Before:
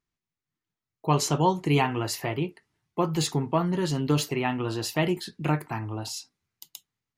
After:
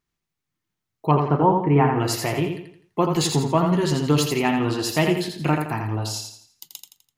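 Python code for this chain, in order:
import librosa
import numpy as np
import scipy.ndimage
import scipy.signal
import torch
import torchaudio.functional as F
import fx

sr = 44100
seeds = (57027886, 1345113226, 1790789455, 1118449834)

y = fx.lowpass(x, sr, hz=1800.0, slope=24, at=(1.11, 2.0))
y = fx.echo_feedback(y, sr, ms=84, feedback_pct=39, wet_db=-5.5)
y = y * 10.0 ** (4.5 / 20.0)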